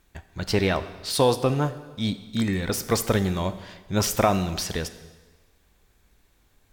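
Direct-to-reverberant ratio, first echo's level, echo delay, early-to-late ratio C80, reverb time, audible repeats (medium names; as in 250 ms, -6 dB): 11.5 dB, no echo, no echo, 15.0 dB, 1.3 s, no echo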